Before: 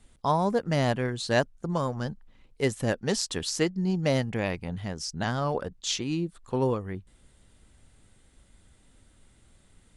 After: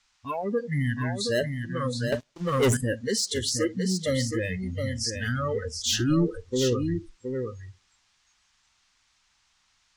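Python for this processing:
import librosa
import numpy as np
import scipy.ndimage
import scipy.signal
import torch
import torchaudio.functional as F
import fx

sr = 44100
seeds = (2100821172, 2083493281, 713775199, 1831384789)

p1 = fx.fixed_phaser(x, sr, hz=1700.0, stages=4, at=(0.67, 1.21))
p2 = fx.echo_wet_lowpass(p1, sr, ms=86, feedback_pct=43, hz=970.0, wet_db=-14.0)
p3 = fx.rider(p2, sr, range_db=3, speed_s=0.5)
p4 = p2 + (p3 * librosa.db_to_amplitude(1.0))
p5 = fx.dmg_noise_band(p4, sr, seeds[0], low_hz=830.0, high_hz=6800.0, level_db=-40.0)
p6 = np.clip(10.0 ** (17.5 / 20.0) * p5, -1.0, 1.0) / 10.0 ** (17.5 / 20.0)
p7 = fx.low_shelf(p6, sr, hz=180.0, db=9.5, at=(5.76, 6.39))
p8 = fx.noise_reduce_blind(p7, sr, reduce_db=27)
p9 = p8 + 10.0 ** (-6.0 / 20.0) * np.pad(p8, (int(720 * sr / 1000.0), 0))[:len(p8)]
p10 = fx.leveller(p9, sr, passes=3, at=(2.12, 2.77))
y = p10 * librosa.db_to_amplitude(-2.5)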